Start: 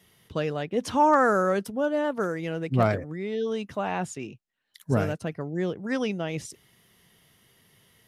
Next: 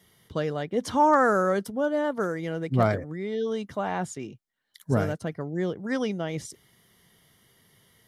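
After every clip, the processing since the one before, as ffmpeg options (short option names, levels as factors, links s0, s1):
-af "bandreject=f=2600:w=5.1"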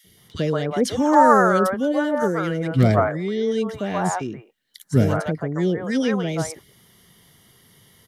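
-filter_complex "[0:a]acrossover=split=580|1800[s0][s1][s2];[s0]adelay=40[s3];[s1]adelay=170[s4];[s3][s4][s2]amix=inputs=3:normalize=0,volume=2.51"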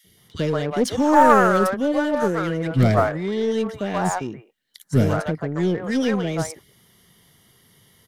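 -filter_complex "[0:a]aeval=exprs='0.841*(cos(1*acos(clip(val(0)/0.841,-1,1)))-cos(1*PI/2))+0.0596*(cos(4*acos(clip(val(0)/0.841,-1,1)))-cos(4*PI/2))':c=same,asplit=2[s0][s1];[s1]acrusher=bits=3:mix=0:aa=0.5,volume=0.266[s2];[s0][s2]amix=inputs=2:normalize=0,volume=0.794"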